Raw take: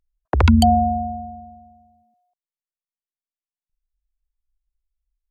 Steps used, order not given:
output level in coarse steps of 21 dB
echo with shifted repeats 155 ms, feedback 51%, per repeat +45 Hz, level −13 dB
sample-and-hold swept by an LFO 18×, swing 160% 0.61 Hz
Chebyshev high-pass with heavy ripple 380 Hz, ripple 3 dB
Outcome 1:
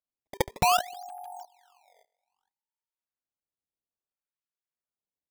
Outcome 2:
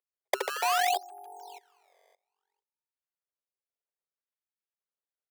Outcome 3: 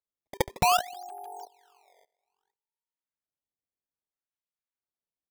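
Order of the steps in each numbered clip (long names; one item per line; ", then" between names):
Chebyshev high-pass with heavy ripple, then echo with shifted repeats, then output level in coarse steps, then sample-and-hold swept by an LFO
echo with shifted repeats, then sample-and-hold swept by an LFO, then output level in coarse steps, then Chebyshev high-pass with heavy ripple
echo with shifted repeats, then Chebyshev high-pass with heavy ripple, then output level in coarse steps, then sample-and-hold swept by an LFO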